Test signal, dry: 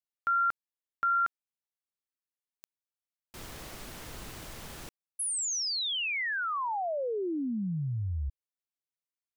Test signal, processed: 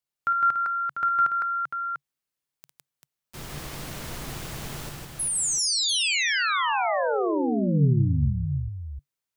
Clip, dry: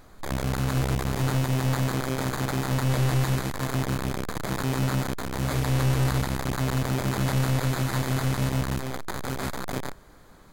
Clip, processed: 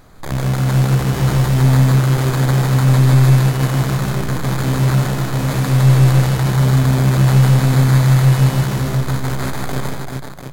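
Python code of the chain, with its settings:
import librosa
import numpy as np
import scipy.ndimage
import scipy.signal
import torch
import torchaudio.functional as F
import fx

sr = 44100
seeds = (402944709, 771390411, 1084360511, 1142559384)

p1 = fx.peak_eq(x, sr, hz=140.0, db=9.5, octaves=0.35)
p2 = p1 + fx.echo_multitap(p1, sr, ms=(54, 158, 391, 695), db=(-10.0, -3.5, -5.5, -8.0), dry=0)
y = p2 * librosa.db_to_amplitude(4.5)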